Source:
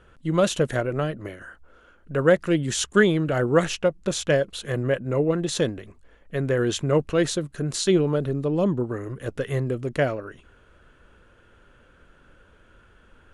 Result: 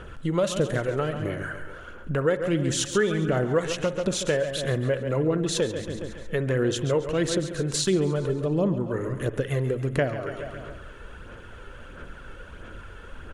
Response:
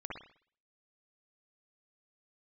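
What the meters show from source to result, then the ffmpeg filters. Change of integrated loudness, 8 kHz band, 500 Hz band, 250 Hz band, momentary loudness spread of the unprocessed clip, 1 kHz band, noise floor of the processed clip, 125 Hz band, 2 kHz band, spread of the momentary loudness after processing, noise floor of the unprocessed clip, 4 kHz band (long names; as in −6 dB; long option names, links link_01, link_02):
−2.5 dB, −0.5 dB, −2.0 dB, −2.5 dB, 10 LU, −2.5 dB, −43 dBFS, −0.5 dB, −3.0 dB, 20 LU, −56 dBFS, −1.0 dB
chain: -filter_complex "[0:a]aecho=1:1:138|276|414|552|690:0.266|0.125|0.0588|0.0276|0.013,aphaser=in_gain=1:out_gain=1:delay=2.3:decay=0.37:speed=1.5:type=sinusoidal,acompressor=threshold=-39dB:ratio=2.5,asplit=2[link_01][link_02];[1:a]atrim=start_sample=2205[link_03];[link_02][link_03]afir=irnorm=-1:irlink=0,volume=-12dB[link_04];[link_01][link_04]amix=inputs=2:normalize=0,volume=9dB"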